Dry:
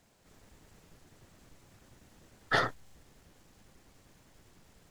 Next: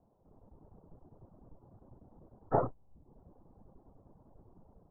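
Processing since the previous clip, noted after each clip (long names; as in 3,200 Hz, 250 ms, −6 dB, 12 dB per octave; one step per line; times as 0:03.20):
Butterworth low-pass 980 Hz 36 dB per octave
reverb reduction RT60 0.64 s
automatic gain control gain up to 4 dB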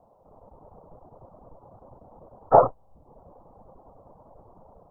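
flat-topped bell 790 Hz +11.5 dB
level +4 dB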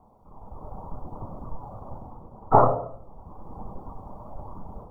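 automatic gain control gain up to 8.5 dB
phase shifter 0.83 Hz, delay 1.8 ms, feedback 27%
convolution reverb RT60 0.65 s, pre-delay 3 ms, DRR 6 dB
level −1 dB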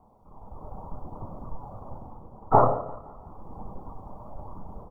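repeating echo 172 ms, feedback 51%, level −19 dB
level −1.5 dB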